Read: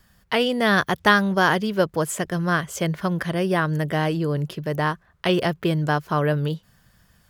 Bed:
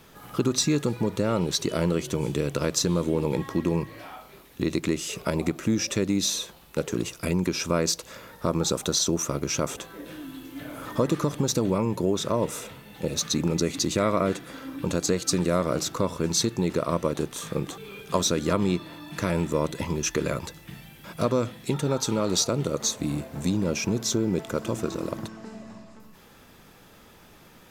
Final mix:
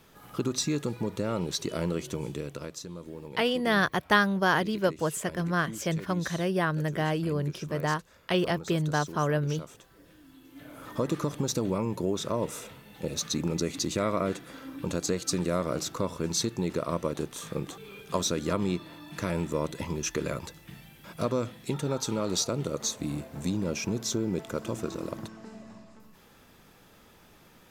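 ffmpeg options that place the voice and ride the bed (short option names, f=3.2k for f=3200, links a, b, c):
-filter_complex "[0:a]adelay=3050,volume=-5.5dB[a];[1:a]volume=7dB,afade=t=out:st=2.07:d=0.74:silence=0.266073,afade=t=in:st=10.23:d=0.91:silence=0.237137[b];[a][b]amix=inputs=2:normalize=0"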